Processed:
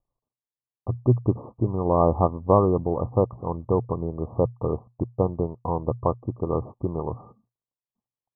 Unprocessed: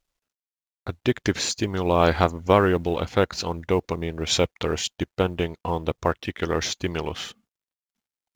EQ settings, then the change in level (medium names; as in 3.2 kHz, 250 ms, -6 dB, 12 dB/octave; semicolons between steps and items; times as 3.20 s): Chebyshev low-pass 1.2 kHz, order 10; peaking EQ 120 Hz +14.5 dB 0.22 oct; 0.0 dB